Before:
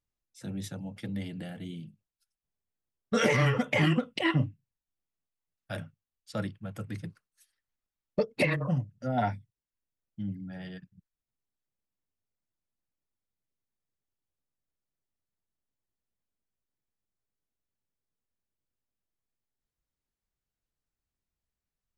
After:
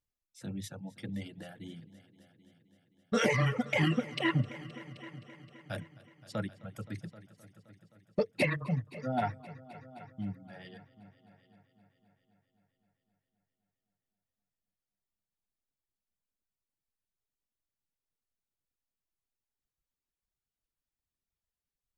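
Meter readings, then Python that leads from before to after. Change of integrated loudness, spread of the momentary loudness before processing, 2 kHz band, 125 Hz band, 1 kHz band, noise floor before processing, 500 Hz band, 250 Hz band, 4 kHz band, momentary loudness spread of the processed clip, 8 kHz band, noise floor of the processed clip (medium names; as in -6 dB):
-3.0 dB, 18 LU, -3.0 dB, -3.5 dB, -3.0 dB, under -85 dBFS, -3.0 dB, -3.0 dB, -3.0 dB, 21 LU, -2.5 dB, under -85 dBFS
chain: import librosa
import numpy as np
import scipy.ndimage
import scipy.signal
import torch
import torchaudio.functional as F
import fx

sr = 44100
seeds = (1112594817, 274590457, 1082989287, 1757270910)

y = fx.dereverb_blind(x, sr, rt60_s=1.7)
y = fx.echo_heads(y, sr, ms=261, heads='all three', feedback_pct=48, wet_db=-21.5)
y = y * 10.0 ** (-2.0 / 20.0)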